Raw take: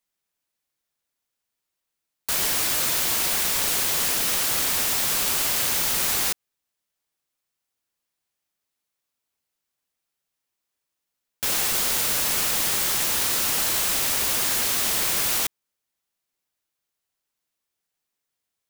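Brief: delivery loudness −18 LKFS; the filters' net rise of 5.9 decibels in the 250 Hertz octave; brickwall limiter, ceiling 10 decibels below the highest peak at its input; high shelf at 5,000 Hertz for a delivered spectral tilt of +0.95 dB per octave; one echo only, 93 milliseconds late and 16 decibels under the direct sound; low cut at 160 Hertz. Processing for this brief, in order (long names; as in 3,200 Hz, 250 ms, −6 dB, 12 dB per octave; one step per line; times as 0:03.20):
high-pass filter 160 Hz
parametric band 250 Hz +8.5 dB
high-shelf EQ 5,000 Hz +8.5 dB
brickwall limiter −13 dBFS
single-tap delay 93 ms −16 dB
level +1.5 dB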